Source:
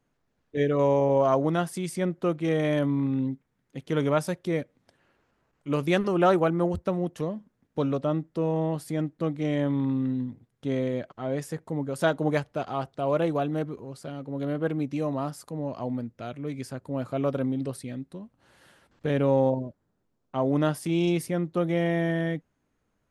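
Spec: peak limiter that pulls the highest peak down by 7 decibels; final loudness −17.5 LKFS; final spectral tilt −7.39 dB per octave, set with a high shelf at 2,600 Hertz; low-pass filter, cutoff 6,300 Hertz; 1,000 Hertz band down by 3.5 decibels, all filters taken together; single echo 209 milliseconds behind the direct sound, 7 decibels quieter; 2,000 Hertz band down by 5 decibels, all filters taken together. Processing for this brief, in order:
low-pass filter 6,300 Hz
parametric band 1,000 Hz −4 dB
parametric band 2,000 Hz −6.5 dB
high-shelf EQ 2,600 Hz +3.5 dB
brickwall limiter −19.5 dBFS
single-tap delay 209 ms −7 dB
level +12 dB

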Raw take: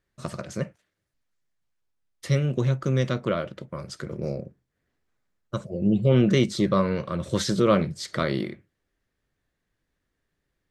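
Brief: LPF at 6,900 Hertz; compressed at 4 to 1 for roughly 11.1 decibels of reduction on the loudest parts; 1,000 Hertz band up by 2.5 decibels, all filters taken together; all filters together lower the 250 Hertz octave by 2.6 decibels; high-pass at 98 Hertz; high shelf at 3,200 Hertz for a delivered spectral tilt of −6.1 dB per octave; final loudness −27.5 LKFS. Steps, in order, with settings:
high-pass filter 98 Hz
low-pass filter 6,900 Hz
parametric band 250 Hz −3.5 dB
parametric band 1,000 Hz +4 dB
high-shelf EQ 3,200 Hz −5.5 dB
downward compressor 4 to 1, threshold −29 dBFS
level +7 dB

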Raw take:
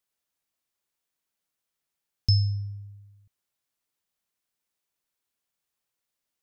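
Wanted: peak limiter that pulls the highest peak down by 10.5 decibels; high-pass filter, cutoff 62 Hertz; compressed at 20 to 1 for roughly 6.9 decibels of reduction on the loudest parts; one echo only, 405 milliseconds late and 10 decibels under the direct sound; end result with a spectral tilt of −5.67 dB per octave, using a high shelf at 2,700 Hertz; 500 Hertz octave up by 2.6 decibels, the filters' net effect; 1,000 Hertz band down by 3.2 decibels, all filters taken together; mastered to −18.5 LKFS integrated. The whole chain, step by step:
high-pass filter 62 Hz
parametric band 500 Hz +5 dB
parametric band 1,000 Hz −7 dB
high-shelf EQ 2,700 Hz −8 dB
downward compressor 20 to 1, threshold −24 dBFS
brickwall limiter −26.5 dBFS
single-tap delay 405 ms −10 dB
level +18 dB

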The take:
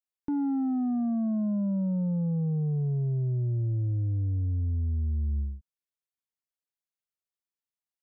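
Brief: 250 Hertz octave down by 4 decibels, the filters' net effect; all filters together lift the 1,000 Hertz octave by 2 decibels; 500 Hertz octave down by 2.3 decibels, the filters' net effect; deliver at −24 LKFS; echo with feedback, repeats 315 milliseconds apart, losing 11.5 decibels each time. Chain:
parametric band 250 Hz −5 dB
parametric band 500 Hz −3 dB
parametric band 1,000 Hz +5 dB
repeating echo 315 ms, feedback 27%, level −11.5 dB
level +6.5 dB

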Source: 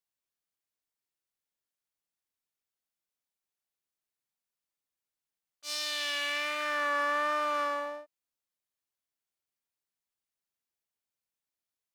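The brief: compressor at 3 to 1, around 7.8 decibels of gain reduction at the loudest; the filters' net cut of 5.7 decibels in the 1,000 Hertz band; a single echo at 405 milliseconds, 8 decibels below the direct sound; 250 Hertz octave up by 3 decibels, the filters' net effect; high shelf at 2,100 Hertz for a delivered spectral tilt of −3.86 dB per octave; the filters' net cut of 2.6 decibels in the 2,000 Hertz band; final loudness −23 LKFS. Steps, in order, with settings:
parametric band 250 Hz +4 dB
parametric band 1,000 Hz −7.5 dB
parametric band 2,000 Hz −5 dB
high-shelf EQ 2,100 Hz +7.5 dB
downward compressor 3 to 1, threshold −36 dBFS
single-tap delay 405 ms −8 dB
level +14.5 dB

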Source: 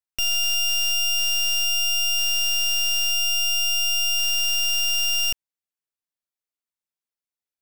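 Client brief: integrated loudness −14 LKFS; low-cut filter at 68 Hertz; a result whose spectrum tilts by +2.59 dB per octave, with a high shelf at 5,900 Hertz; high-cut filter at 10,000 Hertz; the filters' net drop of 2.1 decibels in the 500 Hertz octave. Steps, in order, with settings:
high-pass filter 68 Hz
low-pass filter 10,000 Hz
parametric band 500 Hz −4 dB
high-shelf EQ 5,900 Hz +6.5 dB
level +4.5 dB

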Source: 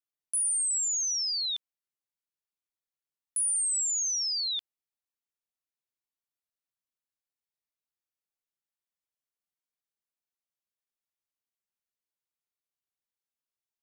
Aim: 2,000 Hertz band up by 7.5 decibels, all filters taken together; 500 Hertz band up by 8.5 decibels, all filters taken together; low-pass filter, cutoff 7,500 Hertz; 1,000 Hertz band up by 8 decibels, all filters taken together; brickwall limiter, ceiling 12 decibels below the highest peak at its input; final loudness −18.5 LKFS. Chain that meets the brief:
low-pass filter 7,500 Hz
parametric band 500 Hz +8.5 dB
parametric band 1,000 Hz +5.5 dB
parametric band 2,000 Hz +8 dB
level +20 dB
brickwall limiter −17.5 dBFS

